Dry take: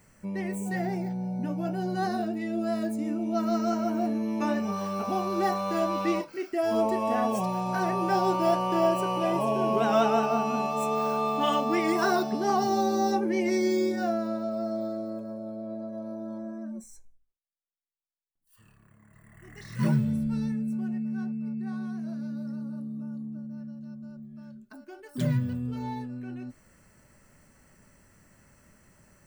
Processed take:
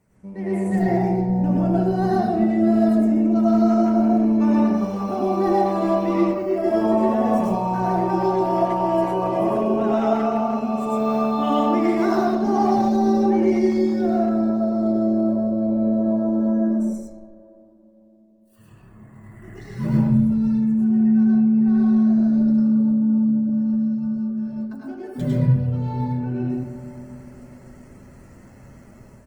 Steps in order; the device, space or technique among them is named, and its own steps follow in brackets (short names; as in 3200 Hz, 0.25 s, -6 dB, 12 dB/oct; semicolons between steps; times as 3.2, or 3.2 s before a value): tilt shelf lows +5.5 dB, about 1100 Hz; low shelf 130 Hz -5 dB; digital reverb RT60 3.8 s, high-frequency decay 0.3×, pre-delay 15 ms, DRR 13.5 dB; speakerphone in a meeting room (reverb RT60 0.55 s, pre-delay 94 ms, DRR -3.5 dB; speakerphone echo 80 ms, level -8 dB; AGC; gain -7 dB; Opus 20 kbps 48000 Hz)